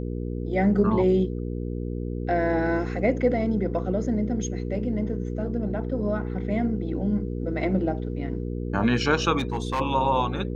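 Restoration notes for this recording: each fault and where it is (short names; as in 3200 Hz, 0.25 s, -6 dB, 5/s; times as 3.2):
hum 60 Hz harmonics 8 -30 dBFS
9.38–9.8 clipped -21.5 dBFS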